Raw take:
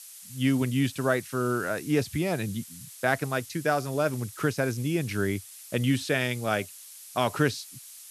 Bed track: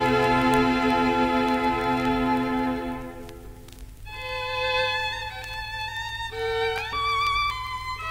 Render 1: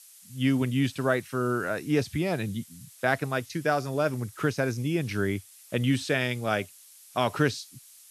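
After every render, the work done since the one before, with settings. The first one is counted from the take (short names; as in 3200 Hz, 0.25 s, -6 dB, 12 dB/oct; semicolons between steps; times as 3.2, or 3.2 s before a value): noise print and reduce 6 dB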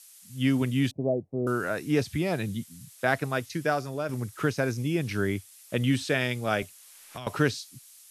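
0.91–1.47 elliptic low-pass 720 Hz, stop band 50 dB; 3.62–4.09 fade out linear, to -7 dB; 6.62–7.27 three-band squash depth 100%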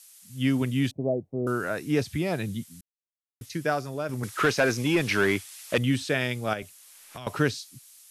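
2.81–3.41 mute; 4.23–5.78 overdrive pedal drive 19 dB, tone 4300 Hz, clips at -11.5 dBFS; 6.53–7.25 compressor 2:1, threshold -34 dBFS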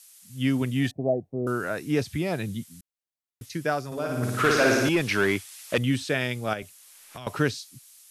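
0.76–1.27 small resonant body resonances 720/1800 Hz, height 12 dB; 3.86–4.89 flutter echo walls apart 9.7 m, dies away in 1.3 s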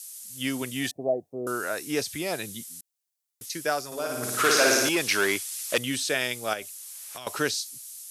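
tone controls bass -14 dB, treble +11 dB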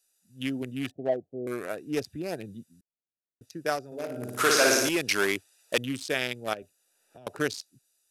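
Wiener smoothing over 41 samples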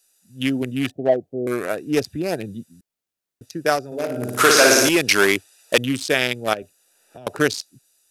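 gain +9.5 dB; limiter -3 dBFS, peak gain reduction 2.5 dB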